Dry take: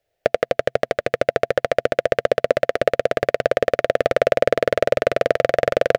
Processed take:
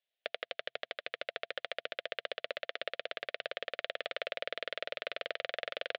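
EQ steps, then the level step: band-pass 3500 Hz, Q 3; air absorption 220 m; +1.5 dB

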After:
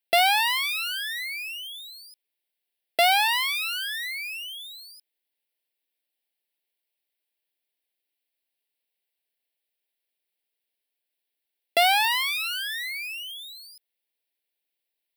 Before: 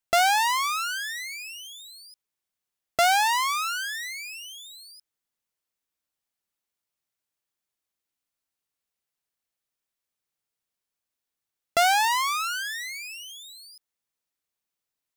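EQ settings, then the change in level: HPF 380 Hz; fixed phaser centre 2900 Hz, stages 4; +5.5 dB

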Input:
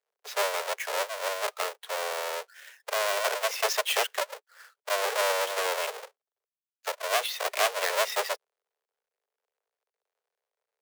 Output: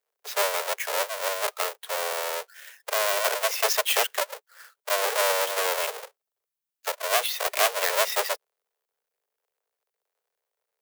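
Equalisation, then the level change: high shelf 10000 Hz +8.5 dB; +2.0 dB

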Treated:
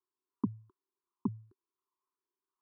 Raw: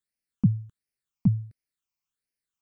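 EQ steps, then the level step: double band-pass 620 Hz, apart 1.4 oct; fixed phaser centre 560 Hz, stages 6; +14.5 dB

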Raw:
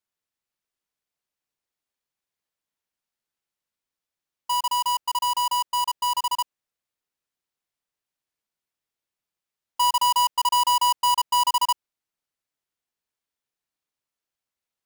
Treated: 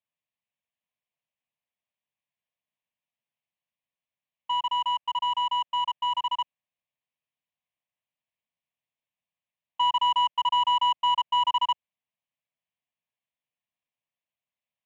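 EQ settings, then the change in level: air absorption 73 m; speaker cabinet 110–5200 Hz, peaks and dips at 840 Hz -7 dB, 2000 Hz -3 dB, 4900 Hz -4 dB; fixed phaser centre 1400 Hz, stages 6; +2.0 dB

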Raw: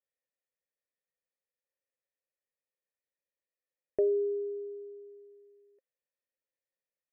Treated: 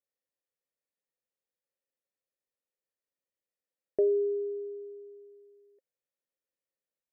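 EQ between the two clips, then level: bell 340 Hz +7 dB 2.4 oct; -5.0 dB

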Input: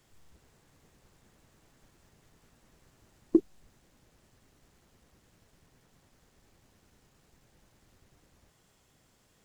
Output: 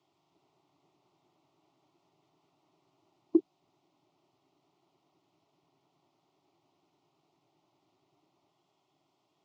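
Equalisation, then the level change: HPF 260 Hz 12 dB/oct; air absorption 210 m; fixed phaser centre 330 Hz, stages 8; 0.0 dB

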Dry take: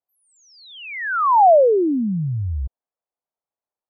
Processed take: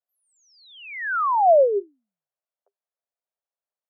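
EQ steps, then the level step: rippled Chebyshev high-pass 390 Hz, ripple 6 dB; bell 690 Hz +5 dB 0.26 oct; -2.0 dB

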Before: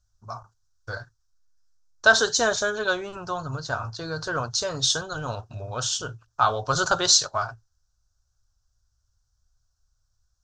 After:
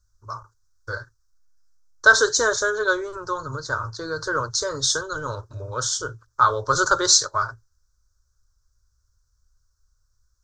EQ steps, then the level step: fixed phaser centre 730 Hz, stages 6; +5.0 dB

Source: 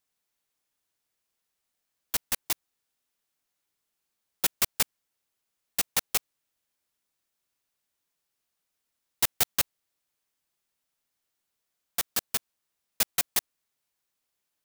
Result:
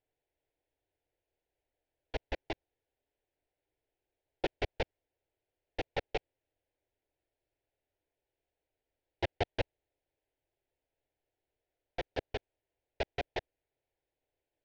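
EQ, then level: air absorption 190 m; tape spacing loss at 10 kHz 43 dB; fixed phaser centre 490 Hz, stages 4; +10.0 dB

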